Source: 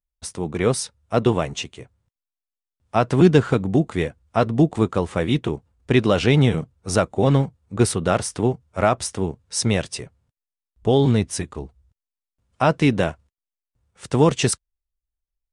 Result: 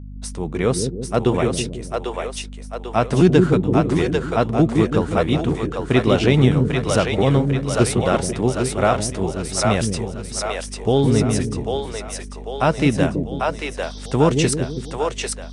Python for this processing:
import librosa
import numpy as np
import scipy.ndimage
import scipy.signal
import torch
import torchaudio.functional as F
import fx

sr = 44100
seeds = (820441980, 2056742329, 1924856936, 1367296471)

y = fx.spec_repair(x, sr, seeds[0], start_s=13.86, length_s=0.23, low_hz=3100.0, high_hz=6200.0, source='after')
y = fx.add_hum(y, sr, base_hz=50, snr_db=13)
y = fx.echo_split(y, sr, split_hz=430.0, low_ms=163, high_ms=795, feedback_pct=52, wet_db=-3.0)